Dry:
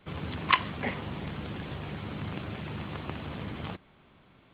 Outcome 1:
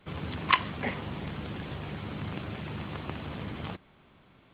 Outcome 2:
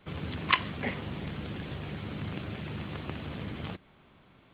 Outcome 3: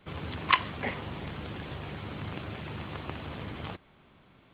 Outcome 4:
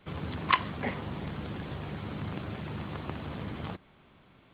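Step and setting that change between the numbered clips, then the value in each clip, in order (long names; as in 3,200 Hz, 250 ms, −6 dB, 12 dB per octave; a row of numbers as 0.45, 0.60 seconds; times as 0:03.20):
dynamic equaliser, frequency: 9,200, 950, 190, 2,700 Hertz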